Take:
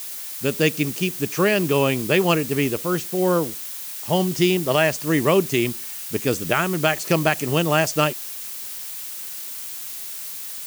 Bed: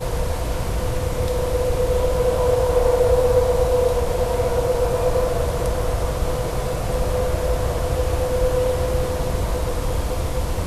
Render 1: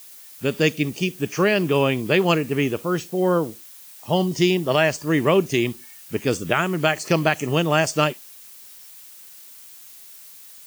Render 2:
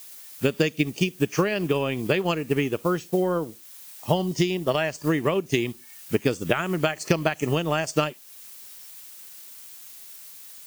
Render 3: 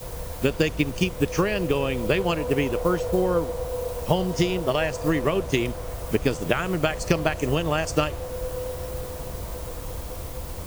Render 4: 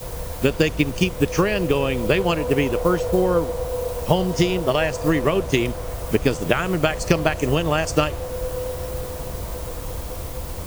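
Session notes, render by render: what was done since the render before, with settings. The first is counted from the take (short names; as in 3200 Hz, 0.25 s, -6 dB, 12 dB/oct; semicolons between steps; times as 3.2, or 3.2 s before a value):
noise print and reduce 11 dB
compressor 6:1, threshold -21 dBFS, peak gain reduction 8.5 dB; transient shaper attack +5 dB, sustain -5 dB
add bed -11.5 dB
gain +3.5 dB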